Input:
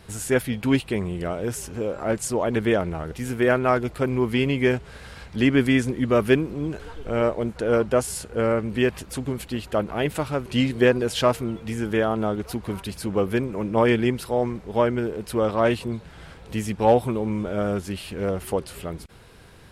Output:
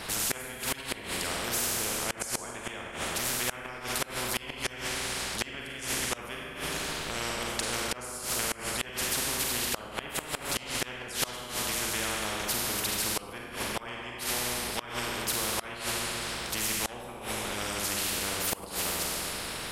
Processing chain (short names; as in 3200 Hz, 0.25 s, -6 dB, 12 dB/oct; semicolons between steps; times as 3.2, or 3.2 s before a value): harmonic-percussive split harmonic -11 dB; Schroeder reverb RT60 1.4 s, combs from 33 ms, DRR -1.5 dB; flipped gate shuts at -14 dBFS, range -28 dB; spectral compressor 4:1